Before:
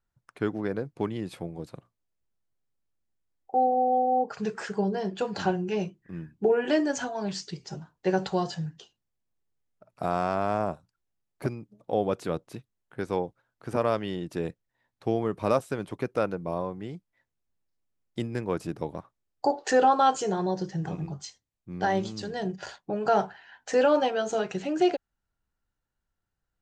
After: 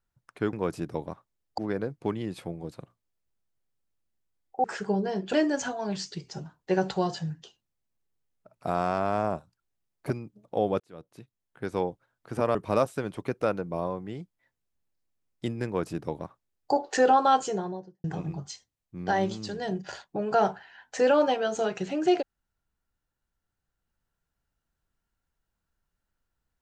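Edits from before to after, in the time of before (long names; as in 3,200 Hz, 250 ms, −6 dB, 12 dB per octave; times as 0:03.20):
0:03.59–0:04.53: remove
0:05.22–0:06.69: remove
0:12.16–0:13.11: fade in
0:13.91–0:15.29: remove
0:18.40–0:19.45: duplicate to 0:00.53
0:20.09–0:20.78: fade out and dull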